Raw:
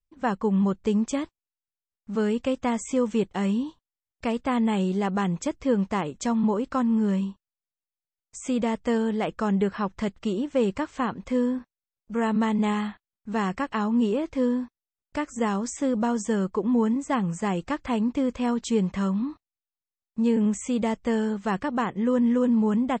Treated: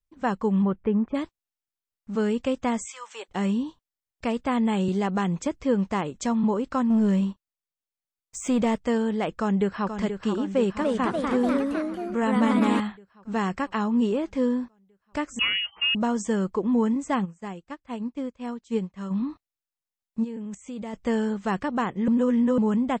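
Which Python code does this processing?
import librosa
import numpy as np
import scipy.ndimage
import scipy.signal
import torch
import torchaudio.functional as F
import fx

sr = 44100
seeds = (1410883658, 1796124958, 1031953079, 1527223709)

y = fx.lowpass(x, sr, hz=fx.line((0.62, 3100.0), (1.14, 1700.0)), slope=24, at=(0.62, 1.14), fade=0.02)
y = fx.highpass(y, sr, hz=fx.line((2.85, 1500.0), (3.28, 520.0)), slope=24, at=(2.85, 3.28), fade=0.02)
y = fx.band_squash(y, sr, depth_pct=40, at=(4.88, 5.54))
y = fx.leveller(y, sr, passes=1, at=(6.9, 8.82))
y = fx.echo_throw(y, sr, start_s=9.35, length_s=0.63, ms=480, feedback_pct=70, wet_db=-8.0)
y = fx.echo_pitch(y, sr, ms=300, semitones=2, count=3, db_per_echo=-3.0, at=(10.48, 12.8))
y = fx.freq_invert(y, sr, carrier_hz=3100, at=(15.39, 15.95))
y = fx.upward_expand(y, sr, threshold_db=-34.0, expansion=2.5, at=(17.24, 19.1), fade=0.02)
y = fx.level_steps(y, sr, step_db=17, at=(20.23, 20.93), fade=0.02)
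y = fx.edit(y, sr, fx.reverse_span(start_s=22.08, length_s=0.5), tone=tone)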